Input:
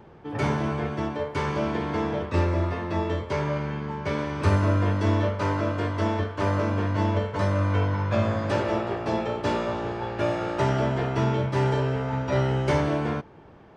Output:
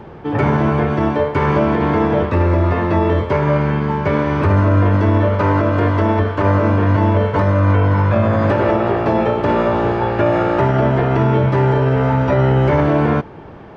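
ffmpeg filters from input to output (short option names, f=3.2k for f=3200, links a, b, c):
-filter_complex "[0:a]acrossover=split=2600[a][b];[b]acompressor=threshold=-53dB:ratio=4:attack=1:release=60[c];[a][c]amix=inputs=2:normalize=0,highshelf=f=6.1k:g=-11.5,alimiter=level_in=19dB:limit=-1dB:release=50:level=0:latency=1,volume=-5.5dB"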